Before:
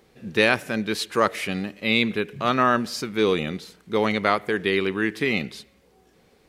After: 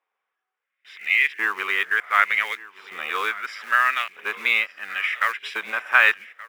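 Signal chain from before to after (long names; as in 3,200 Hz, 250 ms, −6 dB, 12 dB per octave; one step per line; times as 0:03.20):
played backwards from end to start
noise gate with hold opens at −46 dBFS
Savitzky-Golay smoothing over 25 samples
in parallel at −5.5 dB: floating-point word with a short mantissa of 2 bits
on the sum: auto-filter high-pass saw up 0.72 Hz 970–2,300 Hz
on a send: single-tap delay 1,176 ms −19 dB
on the sum: level −1.5 dB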